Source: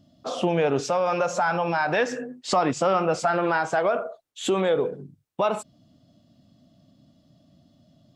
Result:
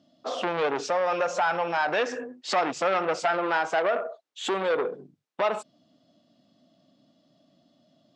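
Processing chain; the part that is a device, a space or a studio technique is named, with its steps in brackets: public-address speaker with an overloaded transformer (core saturation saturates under 1500 Hz; BPF 290–6000 Hz)

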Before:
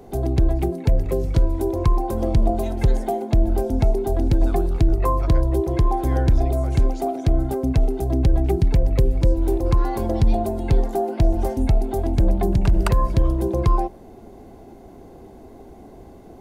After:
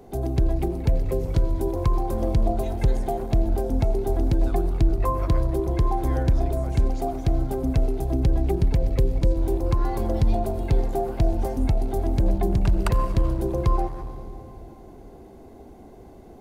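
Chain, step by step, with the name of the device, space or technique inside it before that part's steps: saturated reverb return (on a send at -7 dB: reverb RT60 2.4 s, pre-delay 78 ms + soft clip -17 dBFS, distortion -10 dB); on the sum: gain -3.5 dB

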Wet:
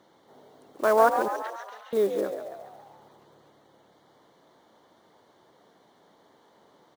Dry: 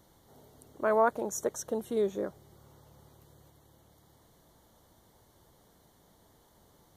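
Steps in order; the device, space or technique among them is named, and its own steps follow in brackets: early digital voice recorder (BPF 260–3600 Hz; block floating point 5-bit); 1.28–1.93 Chebyshev band-pass 1400–3700 Hz, order 2; frequency-shifting echo 0.138 s, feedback 56%, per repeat +64 Hz, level -8.5 dB; gain +5.5 dB

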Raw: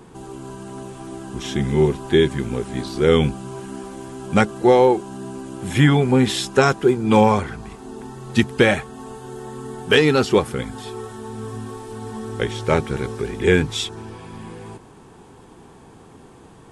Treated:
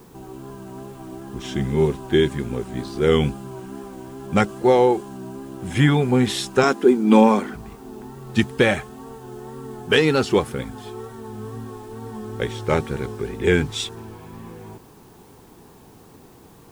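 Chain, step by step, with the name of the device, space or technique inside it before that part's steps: 6.63–7.54 resonant low shelf 160 Hz -13.5 dB, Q 3; plain cassette with noise reduction switched in (mismatched tape noise reduction decoder only; wow and flutter; white noise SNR 35 dB); gain -2 dB

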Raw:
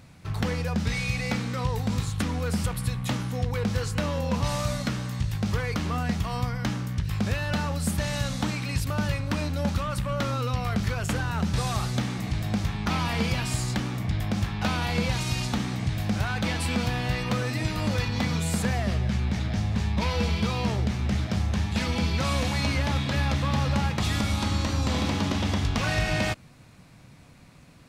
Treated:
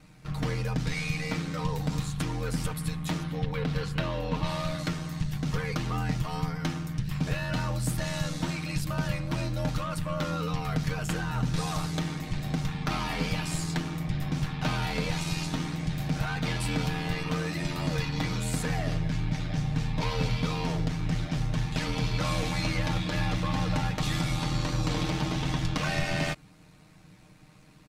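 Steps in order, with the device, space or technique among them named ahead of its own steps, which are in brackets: 3.23–4.79 resonant high shelf 4900 Hz -7 dB, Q 1.5; ring-modulated robot voice (ring modulator 41 Hz; comb 6.5 ms); gain -1.5 dB

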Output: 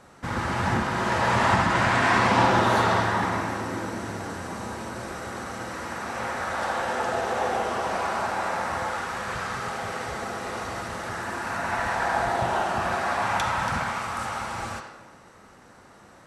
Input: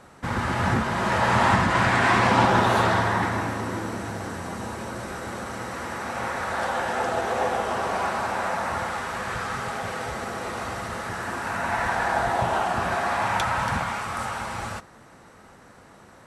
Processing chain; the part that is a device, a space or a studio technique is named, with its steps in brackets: filtered reverb send (on a send: HPF 240 Hz + LPF 5900 Hz + reverb RT60 1.1 s, pre-delay 38 ms, DRR 3.5 dB); on the sum: bell 5900 Hz +2.5 dB; gain -2.5 dB

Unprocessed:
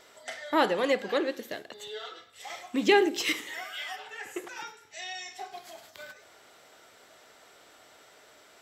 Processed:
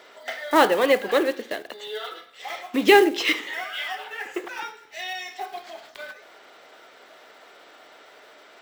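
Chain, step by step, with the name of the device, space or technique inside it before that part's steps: early digital voice recorder (BPF 260–4000 Hz; block floating point 5-bit); gain +7.5 dB

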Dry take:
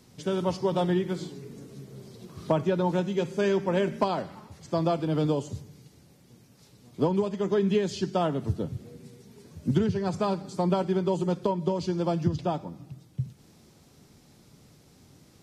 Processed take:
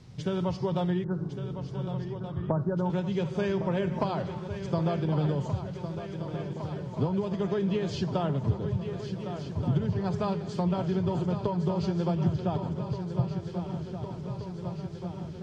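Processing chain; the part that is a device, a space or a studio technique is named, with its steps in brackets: 1.04–2.9 steep low-pass 1600 Hz 72 dB/oct; jukebox (LPF 5000 Hz 12 dB/oct; resonant low shelf 180 Hz +7.5 dB, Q 1.5; compressor 3:1, threshold -28 dBFS, peak gain reduction 12 dB); swung echo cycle 1.477 s, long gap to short 3:1, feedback 68%, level -10 dB; gain +1.5 dB

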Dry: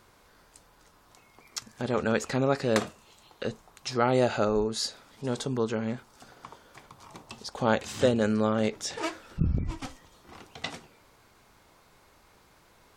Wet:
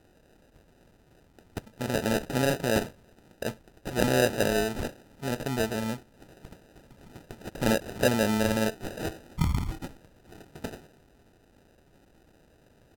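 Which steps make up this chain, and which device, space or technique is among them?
crushed at another speed (playback speed 1.25×; sample-and-hold 32×; playback speed 0.8×)

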